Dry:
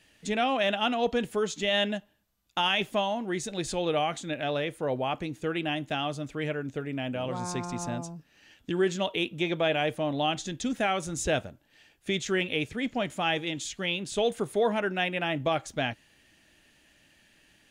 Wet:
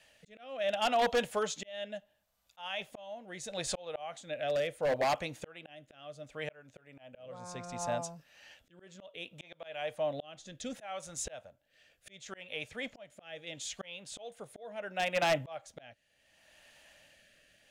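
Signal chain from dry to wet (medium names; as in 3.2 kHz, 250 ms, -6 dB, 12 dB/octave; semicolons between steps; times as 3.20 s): resonant low shelf 450 Hz -7 dB, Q 3; slow attack 792 ms; wavefolder -23 dBFS; rotary cabinet horn 0.7 Hz; trim +2.5 dB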